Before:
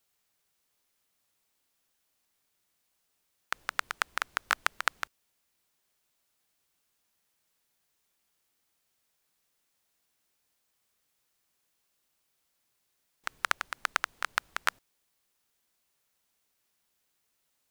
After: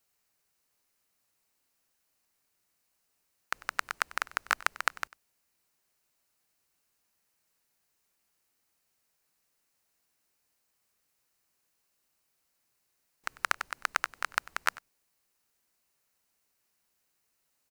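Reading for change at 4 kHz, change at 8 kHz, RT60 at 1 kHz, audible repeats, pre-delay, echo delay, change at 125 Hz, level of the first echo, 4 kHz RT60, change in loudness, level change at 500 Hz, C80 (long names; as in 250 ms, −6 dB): −2.5 dB, 0.0 dB, no reverb audible, 1, no reverb audible, 96 ms, can't be measured, −20.5 dB, no reverb audible, 0.0 dB, 0.0 dB, no reverb audible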